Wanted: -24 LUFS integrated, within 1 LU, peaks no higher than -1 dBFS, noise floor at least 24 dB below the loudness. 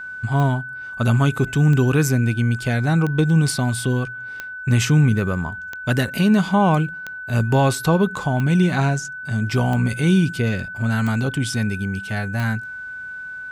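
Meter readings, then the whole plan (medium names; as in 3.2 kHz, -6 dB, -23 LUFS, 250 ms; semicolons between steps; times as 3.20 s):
clicks found 10; steady tone 1.5 kHz; tone level -30 dBFS; loudness -20.0 LUFS; peak level -7.5 dBFS; loudness target -24.0 LUFS
-> de-click; band-stop 1.5 kHz, Q 30; trim -4 dB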